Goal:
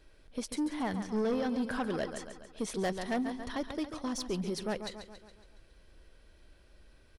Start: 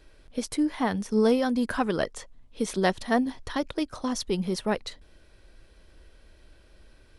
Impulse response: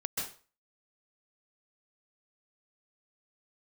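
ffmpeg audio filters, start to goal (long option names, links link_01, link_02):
-filter_complex "[0:a]aecho=1:1:139|278|417|556|695|834:0.282|0.149|0.0792|0.042|0.0222|0.0118,asoftclip=type=tanh:threshold=-21dB,asettb=1/sr,asplit=3[link_01][link_02][link_03];[link_01]atrim=end=1.034[link_04];[link_02]atrim=start=1.03:end=1.71,asetpts=PTS-STARTPTS,afade=type=in:duration=0.004:curve=qsin,afade=type=out:start_time=0.676:duration=0.004:curve=qsin,acrossover=split=5800[link_05][link_06];[link_06]acompressor=threshold=-57dB:ratio=4:attack=1:release=60[link_07];[link_05][link_07]amix=inputs=2:normalize=0[link_08];[link_03]atrim=start=1.706[link_09];[link_04][link_08]acrossfade=duration=0.004:curve1=hsin:curve2=qsin[link_10];[link_10][link_09]acrossfade=duration=0.004:curve1=qsin:curve2=hsin,volume=-5dB"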